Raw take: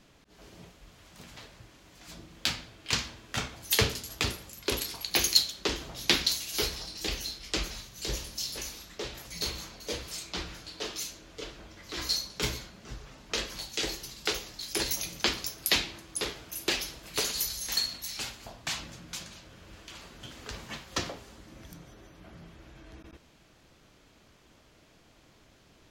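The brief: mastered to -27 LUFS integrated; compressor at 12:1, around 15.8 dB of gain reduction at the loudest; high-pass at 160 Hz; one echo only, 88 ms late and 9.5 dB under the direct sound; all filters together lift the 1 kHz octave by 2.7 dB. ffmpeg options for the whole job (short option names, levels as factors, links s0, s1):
-af "highpass=160,equalizer=f=1000:t=o:g=3.5,acompressor=threshold=0.0178:ratio=12,aecho=1:1:88:0.335,volume=4.22"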